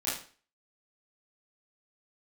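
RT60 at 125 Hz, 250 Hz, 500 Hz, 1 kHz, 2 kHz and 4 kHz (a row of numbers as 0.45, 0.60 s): 0.40, 0.40, 0.40, 0.40, 0.40, 0.40 s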